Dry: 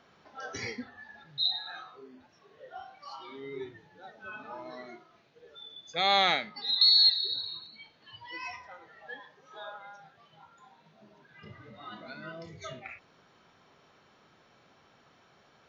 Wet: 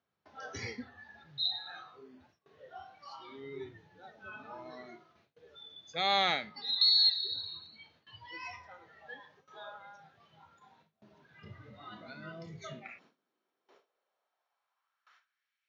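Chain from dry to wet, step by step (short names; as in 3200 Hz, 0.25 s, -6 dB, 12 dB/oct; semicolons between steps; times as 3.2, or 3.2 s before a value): gate with hold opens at -50 dBFS; high-pass sweep 80 Hz -> 2200 Hz, 11.92–15.62; gain -4 dB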